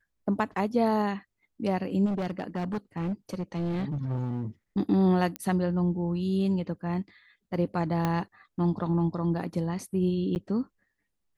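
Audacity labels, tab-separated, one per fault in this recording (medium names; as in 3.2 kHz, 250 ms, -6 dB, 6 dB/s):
2.050000	4.440000	clipped -26.5 dBFS
5.360000	5.360000	pop -17 dBFS
8.050000	8.050000	pop -14 dBFS
10.350000	10.360000	dropout 9.6 ms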